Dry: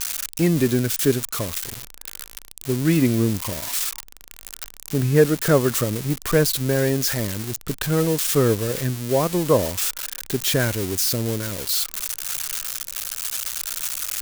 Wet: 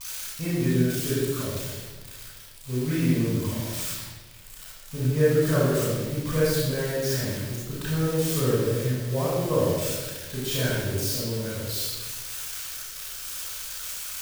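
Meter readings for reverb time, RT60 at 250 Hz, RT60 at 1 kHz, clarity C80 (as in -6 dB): 1.3 s, 1.5 s, 1.1 s, 0.5 dB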